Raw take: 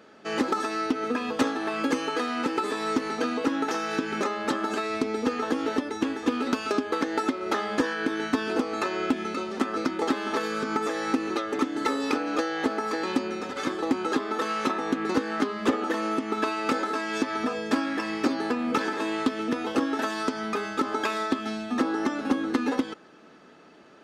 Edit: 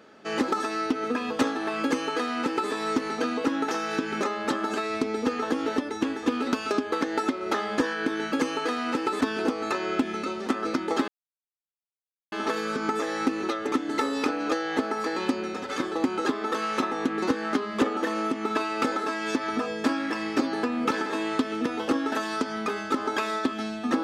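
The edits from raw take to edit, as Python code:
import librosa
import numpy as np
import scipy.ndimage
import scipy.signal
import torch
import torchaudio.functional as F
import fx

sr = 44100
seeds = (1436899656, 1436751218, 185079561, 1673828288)

y = fx.edit(x, sr, fx.duplicate(start_s=1.83, length_s=0.89, to_s=8.32),
    fx.insert_silence(at_s=10.19, length_s=1.24), tone=tone)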